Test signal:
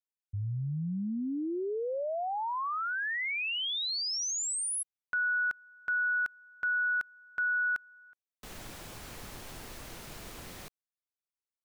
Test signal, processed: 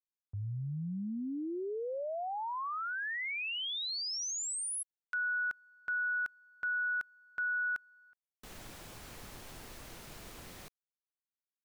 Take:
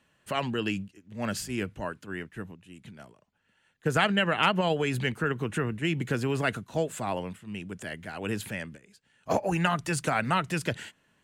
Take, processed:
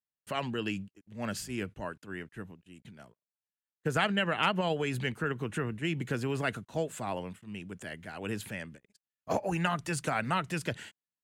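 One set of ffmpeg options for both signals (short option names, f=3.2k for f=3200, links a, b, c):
-af "agate=range=-33dB:threshold=-60dB:ratio=16:release=20:detection=peak,volume=-4dB"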